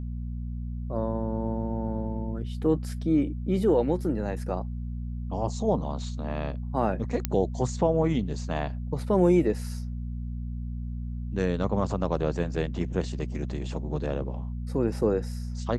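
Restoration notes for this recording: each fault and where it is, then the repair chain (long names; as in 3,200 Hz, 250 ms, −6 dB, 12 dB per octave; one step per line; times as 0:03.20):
mains hum 60 Hz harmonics 4 −33 dBFS
0:07.25: click −9 dBFS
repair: click removal
hum removal 60 Hz, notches 4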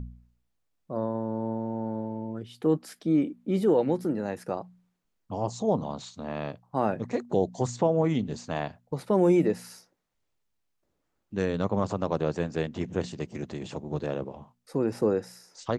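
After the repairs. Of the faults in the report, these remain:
none of them is left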